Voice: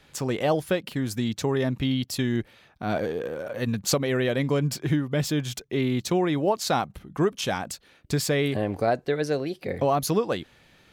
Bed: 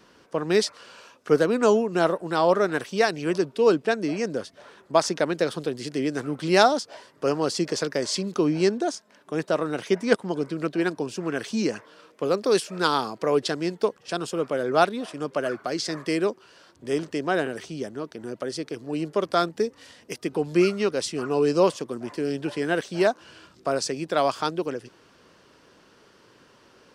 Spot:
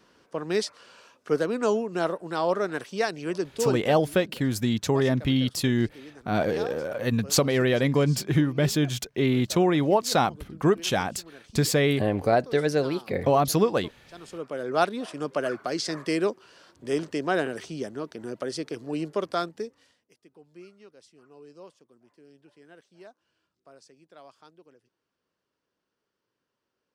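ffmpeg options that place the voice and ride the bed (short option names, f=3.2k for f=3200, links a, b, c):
-filter_complex "[0:a]adelay=3450,volume=2dB[a];[1:a]volume=14dB,afade=t=out:st=3.57:d=0.45:silence=0.177828,afade=t=in:st=14.11:d=0.96:silence=0.112202,afade=t=out:st=18.87:d=1.18:silence=0.0473151[b];[a][b]amix=inputs=2:normalize=0"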